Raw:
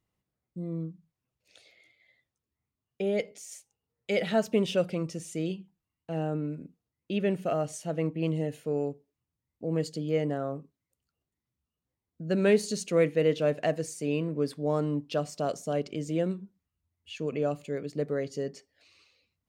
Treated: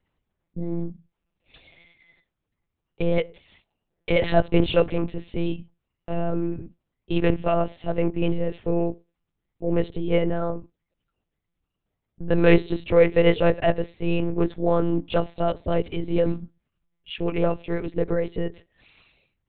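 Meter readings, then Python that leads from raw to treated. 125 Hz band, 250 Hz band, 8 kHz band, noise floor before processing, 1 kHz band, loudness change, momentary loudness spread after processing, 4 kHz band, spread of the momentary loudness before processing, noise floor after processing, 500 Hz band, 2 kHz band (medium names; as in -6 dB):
+6.0 dB, +6.0 dB, under -35 dB, under -85 dBFS, +7.5 dB, +6.0 dB, 13 LU, +5.0 dB, 14 LU, -82 dBFS, +5.5 dB, +7.0 dB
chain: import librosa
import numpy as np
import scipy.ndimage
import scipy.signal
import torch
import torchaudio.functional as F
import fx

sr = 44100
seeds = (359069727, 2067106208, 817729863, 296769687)

y = fx.lpc_monotone(x, sr, seeds[0], pitch_hz=170.0, order=8)
y = y * librosa.db_to_amplitude(7.5)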